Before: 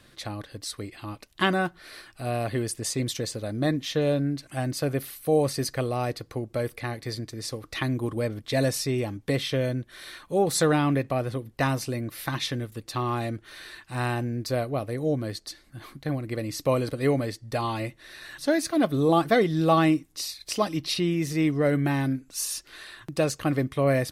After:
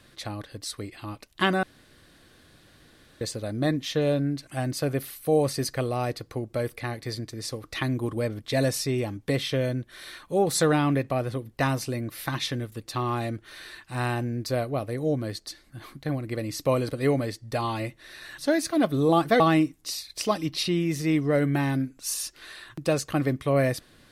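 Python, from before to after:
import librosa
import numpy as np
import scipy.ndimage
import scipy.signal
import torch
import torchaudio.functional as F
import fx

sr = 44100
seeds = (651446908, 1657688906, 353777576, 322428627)

y = fx.edit(x, sr, fx.room_tone_fill(start_s=1.63, length_s=1.58),
    fx.cut(start_s=19.4, length_s=0.31), tone=tone)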